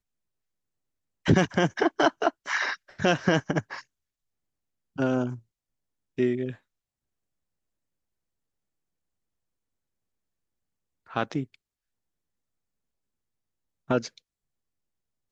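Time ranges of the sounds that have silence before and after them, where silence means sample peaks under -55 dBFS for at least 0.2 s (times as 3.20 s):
1.25–3.83 s
4.96–5.42 s
6.18–6.59 s
11.06–11.55 s
13.88–14.18 s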